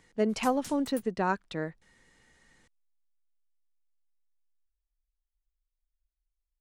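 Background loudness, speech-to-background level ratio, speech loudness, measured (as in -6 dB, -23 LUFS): -46.5 LUFS, 16.0 dB, -30.5 LUFS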